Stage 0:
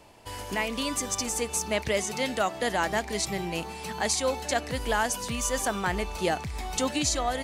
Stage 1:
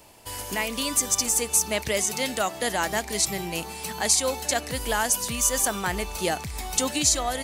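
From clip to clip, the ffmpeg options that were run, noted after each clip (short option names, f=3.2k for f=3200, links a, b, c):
-af "aemphasis=mode=production:type=50kf"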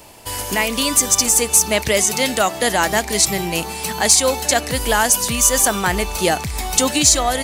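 -af "acontrast=79,volume=2dB"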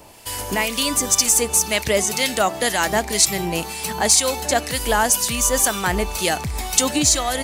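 -filter_complex "[0:a]acrossover=split=1400[a][b];[a]aeval=exprs='val(0)*(1-0.5/2+0.5/2*cos(2*PI*2*n/s))':c=same[c];[b]aeval=exprs='val(0)*(1-0.5/2-0.5/2*cos(2*PI*2*n/s))':c=same[d];[c][d]amix=inputs=2:normalize=0"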